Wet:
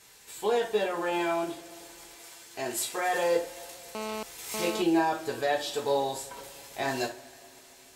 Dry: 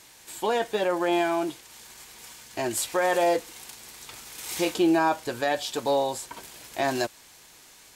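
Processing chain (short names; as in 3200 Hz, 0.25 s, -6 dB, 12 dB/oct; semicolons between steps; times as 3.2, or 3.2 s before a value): 2.12–3.15 low shelf 120 Hz -12 dB; reverb, pre-delay 3 ms, DRR -2.5 dB; 3.95–4.82 GSM buzz -28 dBFS; gain -7 dB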